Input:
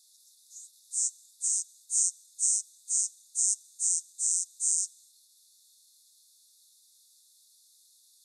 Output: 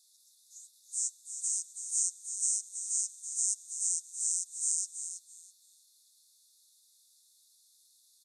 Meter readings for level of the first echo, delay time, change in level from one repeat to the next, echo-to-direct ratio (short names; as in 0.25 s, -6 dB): -9.0 dB, 0.329 s, -13.5 dB, -9.0 dB